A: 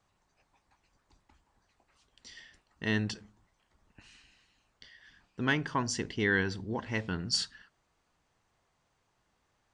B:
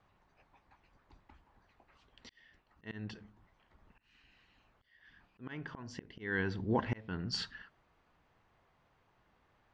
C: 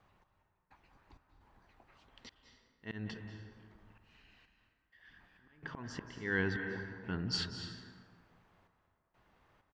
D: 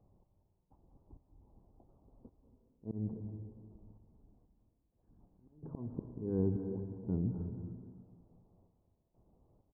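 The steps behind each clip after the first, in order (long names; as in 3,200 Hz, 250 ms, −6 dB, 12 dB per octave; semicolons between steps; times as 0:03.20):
low-pass filter 2,900 Hz 12 dB per octave; volume swells 603 ms; level +4.5 dB
single-tap delay 179 ms −21 dB; gate pattern "x..xx.xxx" 64 BPM −24 dB; on a send at −6 dB: convolution reverb RT60 1.8 s, pre-delay 178 ms; on the sum: level +1.5 dB
Gaussian smoothing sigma 14 samples; level +5 dB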